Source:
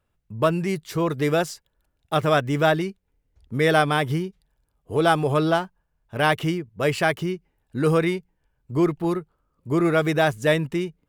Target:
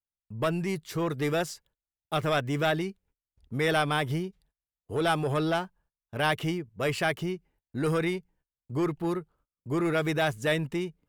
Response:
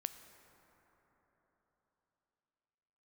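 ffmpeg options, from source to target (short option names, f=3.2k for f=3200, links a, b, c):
-filter_complex "[0:a]agate=range=-27dB:threshold=-56dB:ratio=16:detection=peak,acrossover=split=1500[a][b];[a]asoftclip=type=tanh:threshold=-18dB[c];[c][b]amix=inputs=2:normalize=0,volume=-4dB"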